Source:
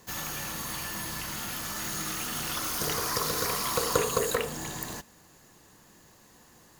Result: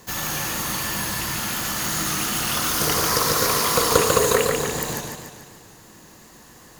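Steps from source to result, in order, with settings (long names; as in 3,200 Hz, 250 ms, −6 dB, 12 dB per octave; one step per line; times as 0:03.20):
feedback echo with a swinging delay time 145 ms, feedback 54%, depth 101 cents, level −4 dB
level +7.5 dB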